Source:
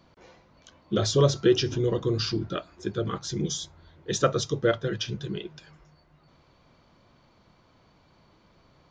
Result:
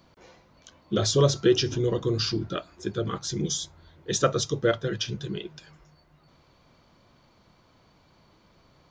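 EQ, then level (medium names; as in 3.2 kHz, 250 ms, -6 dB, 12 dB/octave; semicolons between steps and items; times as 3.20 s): treble shelf 6.9 kHz +7.5 dB; 0.0 dB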